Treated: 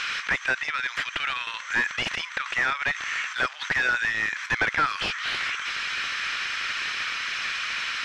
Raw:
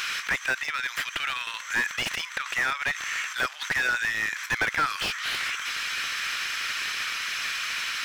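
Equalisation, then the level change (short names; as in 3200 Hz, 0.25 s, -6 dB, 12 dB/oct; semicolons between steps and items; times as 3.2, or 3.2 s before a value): air absorption 100 m; +2.5 dB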